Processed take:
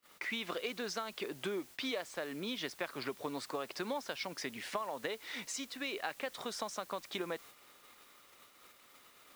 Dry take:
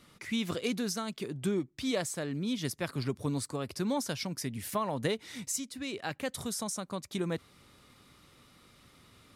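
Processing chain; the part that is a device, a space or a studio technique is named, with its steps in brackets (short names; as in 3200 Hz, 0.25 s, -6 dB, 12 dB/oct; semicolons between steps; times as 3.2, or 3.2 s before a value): baby monitor (BPF 500–3500 Hz; compressor 10:1, threshold -41 dBFS, peak gain reduction 13.5 dB; white noise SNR 17 dB; gate -60 dBFS, range -27 dB); gain +6.5 dB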